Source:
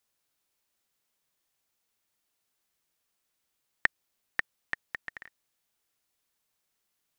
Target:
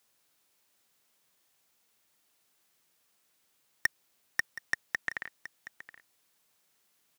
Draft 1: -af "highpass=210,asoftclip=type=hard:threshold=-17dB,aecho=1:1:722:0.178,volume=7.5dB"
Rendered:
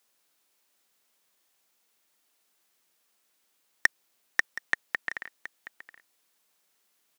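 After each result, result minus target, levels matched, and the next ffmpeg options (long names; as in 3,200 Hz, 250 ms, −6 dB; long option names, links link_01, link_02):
125 Hz band −9.0 dB; hard clipping: distortion −5 dB
-af "highpass=100,asoftclip=type=hard:threshold=-17dB,aecho=1:1:722:0.178,volume=7.5dB"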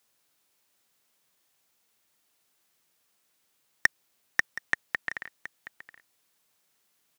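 hard clipping: distortion −5 dB
-af "highpass=100,asoftclip=type=hard:threshold=-25dB,aecho=1:1:722:0.178,volume=7.5dB"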